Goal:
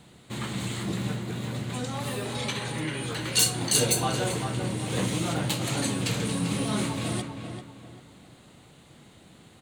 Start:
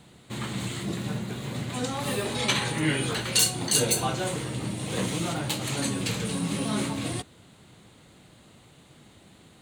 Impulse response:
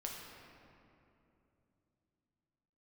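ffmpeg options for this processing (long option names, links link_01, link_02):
-filter_complex "[0:a]asettb=1/sr,asplit=3[link_01][link_02][link_03];[link_01]atrim=end=1.134[link_04];[link_02]atrim=start=1.13:end=3.37,asetpts=PTS-STARTPTS,afade=type=in:duration=0.004:curve=qsin,afade=type=out:start_time=2.236:duration=0.004:curve=qsin,acompressor=threshold=-30dB:ratio=4[link_05];[link_03]atrim=start=3.366[link_06];[link_04][link_05]acrossfade=duration=0.004:curve1=hsin:curve2=qsin[link_07];[link_07][link_06]acrossfade=duration=0.004:curve1=qsin:curve2=hsin,asplit=2[link_08][link_09];[link_09]adelay=392,lowpass=frequency=2500:poles=1,volume=-6.5dB,asplit=2[link_10][link_11];[link_11]adelay=392,lowpass=frequency=2500:poles=1,volume=0.34,asplit=2[link_12][link_13];[link_13]adelay=392,lowpass=frequency=2500:poles=1,volume=0.34,asplit=2[link_14][link_15];[link_15]adelay=392,lowpass=frequency=2500:poles=1,volume=0.34[link_16];[link_08][link_10][link_12][link_14][link_16]amix=inputs=5:normalize=0"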